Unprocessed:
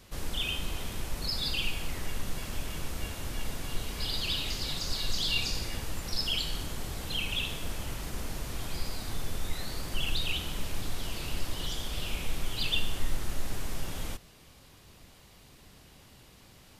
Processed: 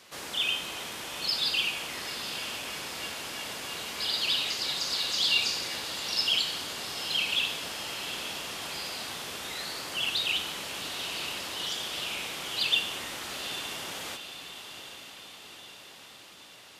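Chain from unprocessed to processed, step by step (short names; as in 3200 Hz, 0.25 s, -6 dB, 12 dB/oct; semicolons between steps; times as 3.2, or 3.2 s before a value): weighting filter A; on a send: diffused feedback echo 0.847 s, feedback 60%, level -10 dB; on the sum: gain +4 dB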